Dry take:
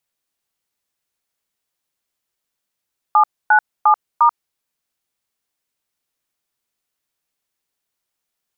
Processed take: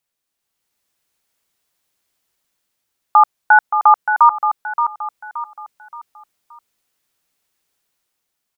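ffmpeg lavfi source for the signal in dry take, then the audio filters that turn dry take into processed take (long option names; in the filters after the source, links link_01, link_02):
-f lavfi -i "aevalsrc='0.282*clip(min(mod(t,0.352),0.087-mod(t,0.352))/0.002,0,1)*(eq(floor(t/0.352),0)*(sin(2*PI*852*mod(t,0.352))+sin(2*PI*1209*mod(t,0.352)))+eq(floor(t/0.352),1)*(sin(2*PI*852*mod(t,0.352))+sin(2*PI*1477*mod(t,0.352)))+eq(floor(t/0.352),2)*(sin(2*PI*852*mod(t,0.352))+sin(2*PI*1209*mod(t,0.352)))+eq(floor(t/0.352),3)*(sin(2*PI*941*mod(t,0.352))+sin(2*PI*1209*mod(t,0.352))))':duration=1.408:sample_rate=44100"
-filter_complex "[0:a]dynaudnorm=framelen=110:gausssize=11:maxgain=7dB,asplit=2[link_01][link_02];[link_02]aecho=0:1:574|1148|1722|2296:0.398|0.151|0.0575|0.0218[link_03];[link_01][link_03]amix=inputs=2:normalize=0"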